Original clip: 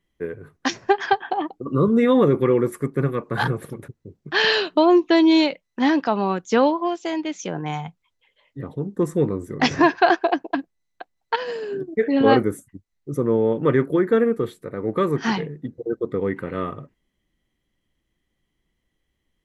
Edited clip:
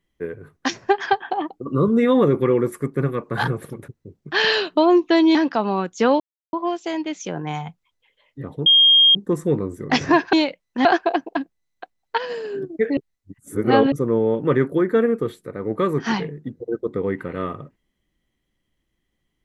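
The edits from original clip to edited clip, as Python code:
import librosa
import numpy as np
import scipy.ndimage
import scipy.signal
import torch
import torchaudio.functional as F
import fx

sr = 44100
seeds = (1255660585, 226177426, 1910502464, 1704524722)

y = fx.edit(x, sr, fx.move(start_s=5.35, length_s=0.52, to_s=10.03),
    fx.insert_silence(at_s=6.72, length_s=0.33),
    fx.insert_tone(at_s=8.85, length_s=0.49, hz=3230.0, db=-9.5),
    fx.reverse_span(start_s=12.15, length_s=0.95), tone=tone)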